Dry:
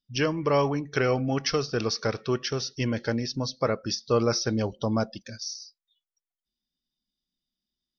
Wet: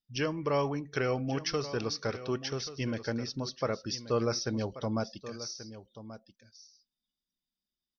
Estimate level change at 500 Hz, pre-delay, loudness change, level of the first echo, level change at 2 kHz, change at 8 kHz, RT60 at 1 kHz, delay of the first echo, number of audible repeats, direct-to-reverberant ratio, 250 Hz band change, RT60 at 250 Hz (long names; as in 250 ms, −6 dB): −6.0 dB, no reverb audible, −6.0 dB, −14.0 dB, −6.0 dB, can't be measured, no reverb audible, 1,133 ms, 1, no reverb audible, −6.0 dB, no reverb audible